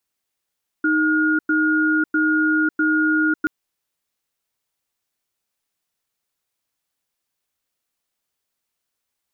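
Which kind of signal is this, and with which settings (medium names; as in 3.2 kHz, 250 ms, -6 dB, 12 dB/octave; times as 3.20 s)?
cadence 311 Hz, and 1.43 kHz, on 0.55 s, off 0.10 s, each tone -18 dBFS 2.63 s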